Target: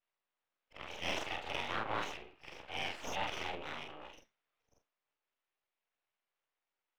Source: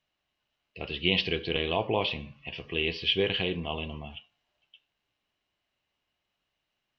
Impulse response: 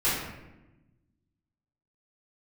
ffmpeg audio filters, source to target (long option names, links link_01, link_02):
-filter_complex "[0:a]afftfilt=real='re':imag='-im':win_size=4096:overlap=0.75,aeval=exprs='abs(val(0))':channel_layout=same,acrossover=split=390 3200:gain=0.224 1 0.158[link_01][link_02][link_03];[link_01][link_02][link_03]amix=inputs=3:normalize=0,volume=1.5dB"